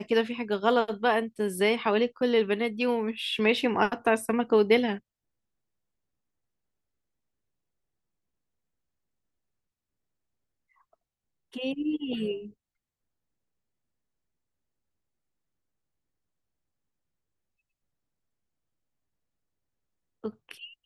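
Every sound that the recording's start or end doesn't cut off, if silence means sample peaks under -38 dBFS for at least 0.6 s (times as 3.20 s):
11.56–12.47 s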